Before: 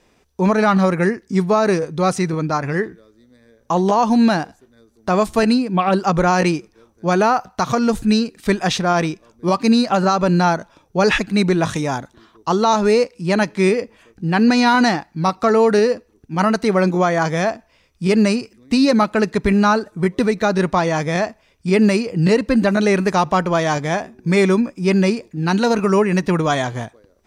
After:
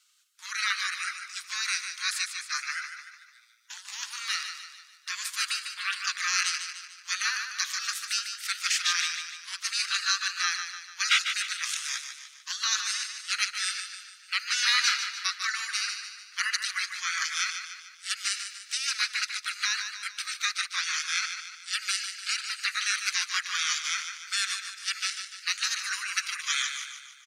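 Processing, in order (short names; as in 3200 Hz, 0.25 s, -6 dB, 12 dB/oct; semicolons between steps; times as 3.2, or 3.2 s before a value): rippled Chebyshev high-pass 1300 Hz, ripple 3 dB; feedback echo 0.148 s, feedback 49%, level -8 dB; spectral gate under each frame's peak -10 dB weak; gain +4.5 dB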